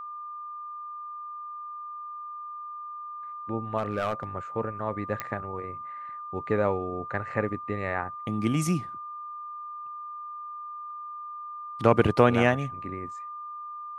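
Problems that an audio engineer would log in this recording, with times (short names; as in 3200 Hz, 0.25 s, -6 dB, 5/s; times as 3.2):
tone 1200 Hz -36 dBFS
3.78–4.24 clipped -22.5 dBFS
5.2 pop -15 dBFS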